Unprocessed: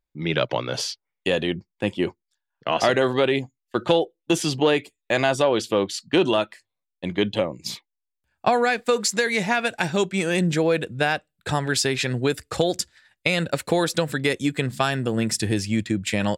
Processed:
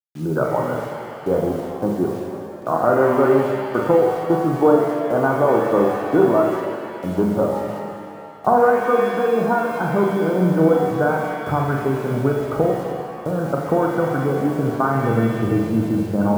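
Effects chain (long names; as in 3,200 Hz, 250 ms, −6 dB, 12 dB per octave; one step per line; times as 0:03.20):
Chebyshev low-pass filter 1,500 Hz, order 8
flutter between parallel walls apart 7.5 metres, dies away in 0.4 s
bit reduction 8 bits
reverb with rising layers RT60 2.2 s, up +7 semitones, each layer −8 dB, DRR 2.5 dB
level +2.5 dB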